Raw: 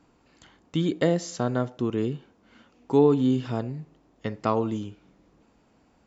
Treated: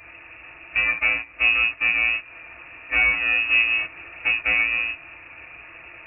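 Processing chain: square wave that keeps the level; robot voice 115 Hz; added noise pink -43 dBFS; gain riding 0.5 s; high-pass 74 Hz 12 dB/octave; compression 2.5:1, threshold -34 dBFS, peak gain reduction 13 dB; FDN reverb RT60 0.3 s, low-frequency decay 1.5×, high-frequency decay 1×, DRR -6.5 dB; gate -30 dBFS, range -9 dB; frequency inversion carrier 2.7 kHz; trim +3.5 dB

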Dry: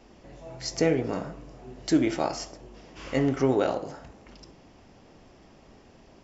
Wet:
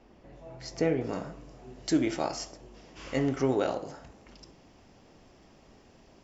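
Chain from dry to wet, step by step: treble shelf 4.5 kHz -10.5 dB, from 1.01 s +4 dB; trim -3.5 dB

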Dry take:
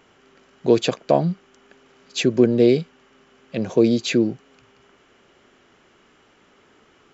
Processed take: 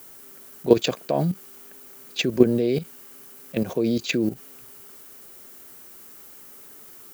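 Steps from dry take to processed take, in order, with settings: level-controlled noise filter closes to 2.8 kHz, open at -15.5 dBFS; added noise violet -46 dBFS; level held to a coarse grid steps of 12 dB; trim +2.5 dB

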